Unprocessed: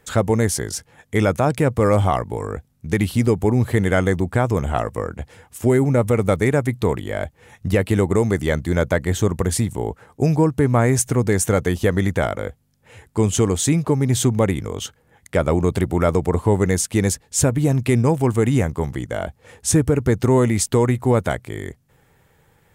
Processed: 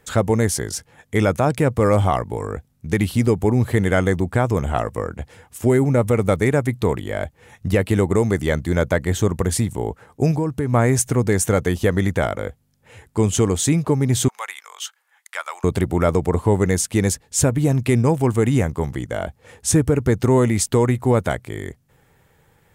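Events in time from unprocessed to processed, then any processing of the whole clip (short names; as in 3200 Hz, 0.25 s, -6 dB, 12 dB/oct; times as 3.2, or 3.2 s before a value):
10.31–10.73 compressor, threshold -17 dBFS
14.28–15.64 HPF 1000 Hz 24 dB/oct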